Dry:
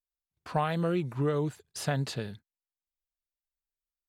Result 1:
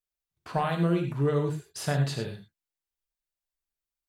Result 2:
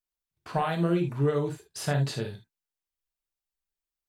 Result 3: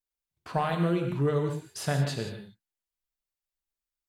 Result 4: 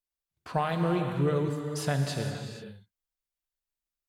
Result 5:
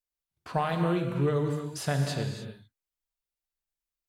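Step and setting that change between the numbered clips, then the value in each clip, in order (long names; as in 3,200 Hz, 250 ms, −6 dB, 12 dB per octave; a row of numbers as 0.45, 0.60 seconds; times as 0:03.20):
reverb whose tail is shaped and stops, gate: 130, 90, 200, 510, 330 milliseconds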